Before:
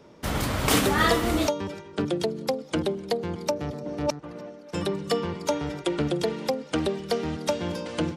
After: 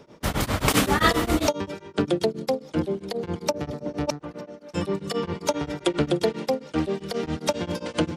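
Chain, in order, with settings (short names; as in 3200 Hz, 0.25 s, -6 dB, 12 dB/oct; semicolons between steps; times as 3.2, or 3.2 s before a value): beating tremolo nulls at 7.5 Hz; gain +4.5 dB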